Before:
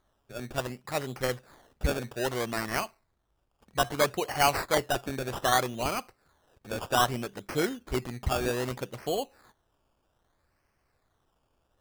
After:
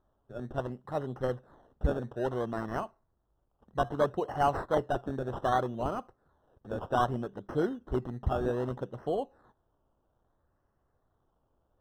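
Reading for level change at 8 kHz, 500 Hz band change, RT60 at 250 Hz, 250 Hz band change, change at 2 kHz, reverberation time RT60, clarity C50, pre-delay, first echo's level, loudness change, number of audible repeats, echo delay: under -20 dB, -1.0 dB, none, 0.0 dB, -9.5 dB, none, none, none, none, -2.5 dB, none, none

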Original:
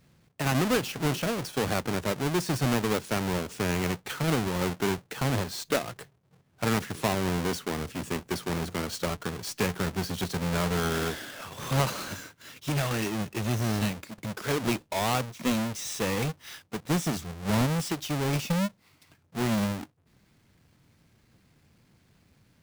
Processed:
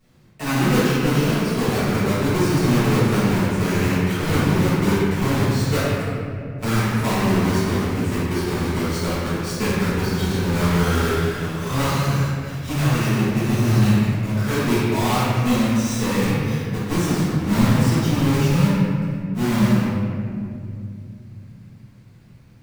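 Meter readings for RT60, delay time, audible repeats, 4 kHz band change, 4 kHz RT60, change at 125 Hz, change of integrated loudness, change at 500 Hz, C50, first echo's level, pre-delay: 2.4 s, none, none, +5.5 dB, 1.3 s, +11.5 dB, +9.0 dB, +7.5 dB, -4.0 dB, none, 4 ms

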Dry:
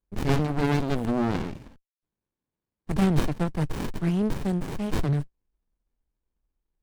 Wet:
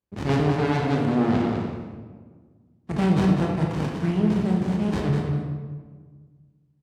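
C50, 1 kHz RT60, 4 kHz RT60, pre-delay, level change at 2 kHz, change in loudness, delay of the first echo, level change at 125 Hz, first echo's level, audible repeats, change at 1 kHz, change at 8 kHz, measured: 1.0 dB, 1.4 s, 0.90 s, 20 ms, +3.0 dB, +3.5 dB, 0.202 s, +3.5 dB, -6.5 dB, 1, +4.0 dB, n/a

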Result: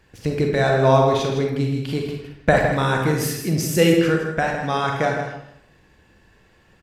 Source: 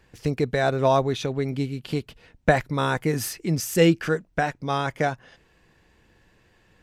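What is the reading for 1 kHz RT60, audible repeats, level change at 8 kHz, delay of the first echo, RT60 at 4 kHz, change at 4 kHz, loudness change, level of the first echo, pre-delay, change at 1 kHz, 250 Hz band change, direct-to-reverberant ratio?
0.75 s, 1, +3.5 dB, 0.159 s, 0.50 s, +4.0 dB, +4.0 dB, -8.0 dB, 35 ms, +4.0 dB, +4.0 dB, 0.5 dB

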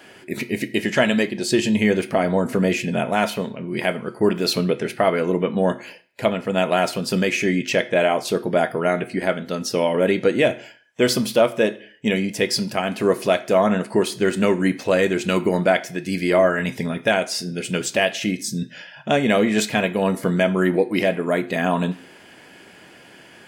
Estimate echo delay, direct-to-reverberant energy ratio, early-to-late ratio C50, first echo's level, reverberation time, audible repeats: none, 10.5 dB, 17.5 dB, none, 0.45 s, none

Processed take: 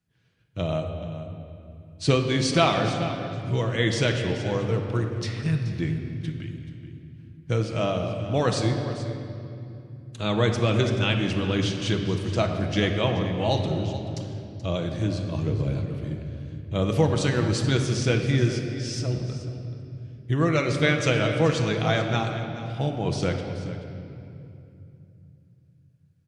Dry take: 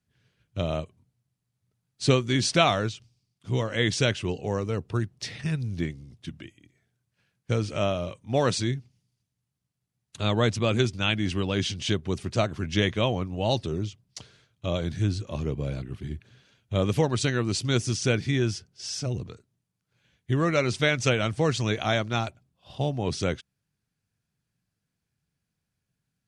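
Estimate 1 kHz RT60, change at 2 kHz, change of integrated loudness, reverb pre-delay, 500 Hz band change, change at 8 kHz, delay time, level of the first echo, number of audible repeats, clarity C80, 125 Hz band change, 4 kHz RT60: 2.5 s, +1.0 dB, +1.5 dB, 6 ms, +2.0 dB, -2.0 dB, 0.43 s, -14.0 dB, 1, 5.5 dB, +3.5 dB, 1.9 s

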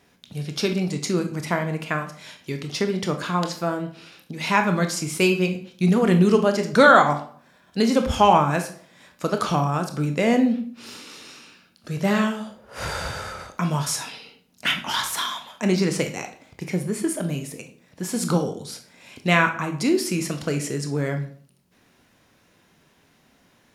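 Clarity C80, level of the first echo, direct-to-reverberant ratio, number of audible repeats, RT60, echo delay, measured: 15.0 dB, none, 5.5 dB, none, 0.50 s, none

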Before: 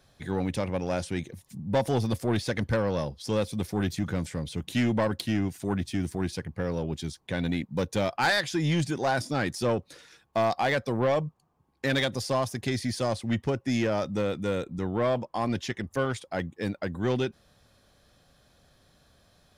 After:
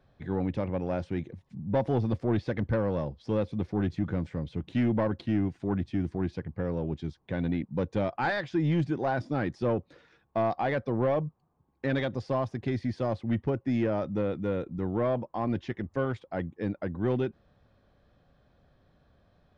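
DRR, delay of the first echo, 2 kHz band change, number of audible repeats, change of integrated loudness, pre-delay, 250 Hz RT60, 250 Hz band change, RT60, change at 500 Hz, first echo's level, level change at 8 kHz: none, none, -6.0 dB, none, -1.5 dB, none, none, 0.0 dB, none, -1.5 dB, none, under -20 dB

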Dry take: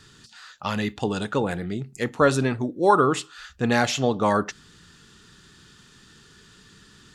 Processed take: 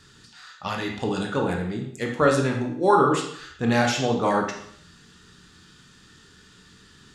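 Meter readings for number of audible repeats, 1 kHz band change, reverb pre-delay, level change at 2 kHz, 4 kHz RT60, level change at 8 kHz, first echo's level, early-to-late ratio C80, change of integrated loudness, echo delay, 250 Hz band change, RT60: none, 0.0 dB, 7 ms, 0.0 dB, 0.60 s, -1.0 dB, none, 9.0 dB, 0.0 dB, none, 0.0 dB, 0.65 s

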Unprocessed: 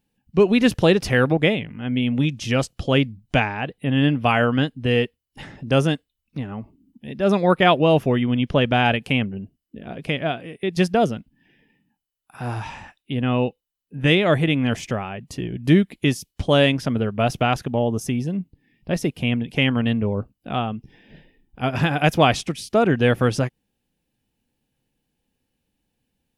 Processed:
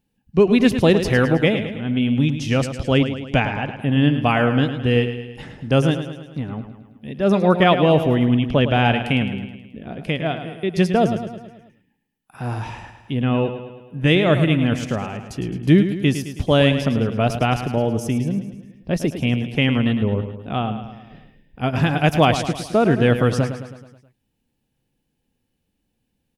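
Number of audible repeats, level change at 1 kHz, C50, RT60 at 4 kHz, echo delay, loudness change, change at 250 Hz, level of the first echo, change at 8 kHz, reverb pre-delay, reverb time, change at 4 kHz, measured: 5, +0.5 dB, none, none, 0.107 s, +1.5 dB, +2.5 dB, -10.0 dB, -0.5 dB, none, none, -0.5 dB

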